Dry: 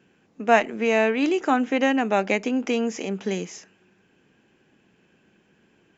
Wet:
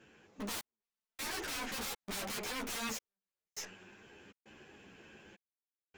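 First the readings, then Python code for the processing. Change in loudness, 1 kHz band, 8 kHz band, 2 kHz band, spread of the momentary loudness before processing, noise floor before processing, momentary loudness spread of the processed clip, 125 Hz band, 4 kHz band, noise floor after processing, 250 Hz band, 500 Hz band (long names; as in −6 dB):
−17.0 dB, −20.0 dB, can't be measured, −16.0 dB, 9 LU, −63 dBFS, 20 LU, −15.5 dB, −6.0 dB, below −85 dBFS, −23.0 dB, −25.5 dB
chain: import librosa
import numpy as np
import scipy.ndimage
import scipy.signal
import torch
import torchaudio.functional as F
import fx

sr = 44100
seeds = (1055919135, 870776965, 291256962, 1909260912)

y = fx.peak_eq(x, sr, hz=200.0, db=-7.0, octaves=1.2)
y = fx.leveller(y, sr, passes=2)
y = fx.rider(y, sr, range_db=3, speed_s=2.0)
y = (np.mod(10.0 ** (22.5 / 20.0) * y + 1.0, 2.0) - 1.0) / 10.0 ** (22.5 / 20.0)
y = fx.tube_stage(y, sr, drive_db=49.0, bias=0.6)
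y = fx.step_gate(y, sr, bpm=101, pattern='xxxx....xxxxx.xx', floor_db=-60.0, edge_ms=4.5)
y = fx.ensemble(y, sr)
y = y * librosa.db_to_amplitude(13.5)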